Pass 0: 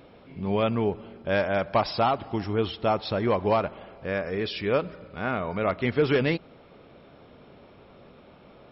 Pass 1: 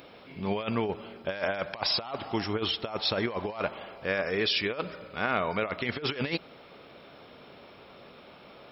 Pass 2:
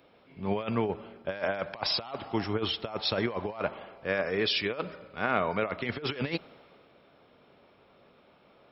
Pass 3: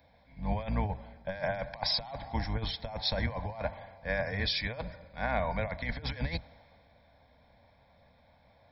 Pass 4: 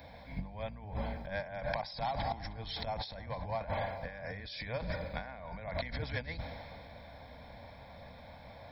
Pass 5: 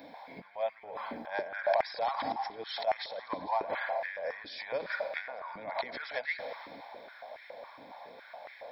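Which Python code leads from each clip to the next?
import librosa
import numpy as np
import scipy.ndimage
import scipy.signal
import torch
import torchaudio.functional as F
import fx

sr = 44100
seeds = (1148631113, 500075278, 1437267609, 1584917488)

y1 = fx.tilt_eq(x, sr, slope=2.5)
y1 = fx.over_compress(y1, sr, threshold_db=-29.0, ratio=-0.5)
y2 = fx.high_shelf(y1, sr, hz=3300.0, db=-7.0)
y2 = fx.band_widen(y2, sr, depth_pct=40)
y3 = fx.octave_divider(y2, sr, octaves=2, level_db=0.0)
y3 = fx.fixed_phaser(y3, sr, hz=1900.0, stages=8)
y4 = fx.over_compress(y3, sr, threshold_db=-44.0, ratio=-1.0)
y4 = y4 + 10.0 ** (-19.5 / 20.0) * np.pad(y4, (int(311 * sr / 1000.0), 0))[:len(y4)]
y4 = y4 * librosa.db_to_amplitude(3.5)
y5 = fx.echo_stepped(y4, sr, ms=112, hz=1000.0, octaves=0.7, feedback_pct=70, wet_db=-9)
y5 = fx.filter_held_highpass(y5, sr, hz=7.2, low_hz=290.0, high_hz=1900.0)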